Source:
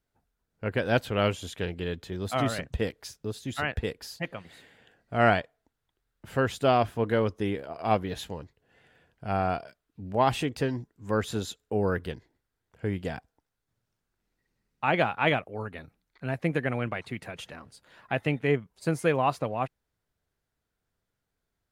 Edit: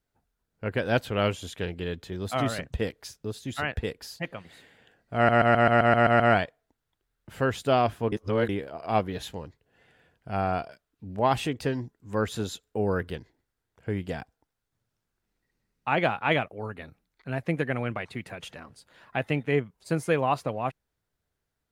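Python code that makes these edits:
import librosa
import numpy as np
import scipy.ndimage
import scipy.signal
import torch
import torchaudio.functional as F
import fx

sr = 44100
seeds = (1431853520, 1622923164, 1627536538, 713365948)

y = fx.edit(x, sr, fx.stutter(start_s=5.16, slice_s=0.13, count=9),
    fx.reverse_span(start_s=7.08, length_s=0.37), tone=tone)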